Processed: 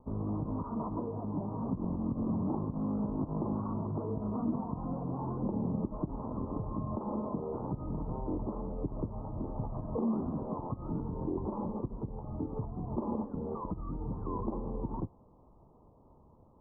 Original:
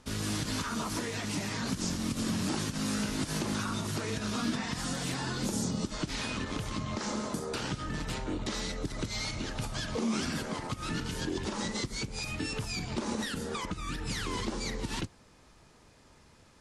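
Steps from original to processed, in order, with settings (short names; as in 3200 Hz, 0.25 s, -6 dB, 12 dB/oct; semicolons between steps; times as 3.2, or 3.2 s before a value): steep low-pass 1100 Hz 72 dB/oct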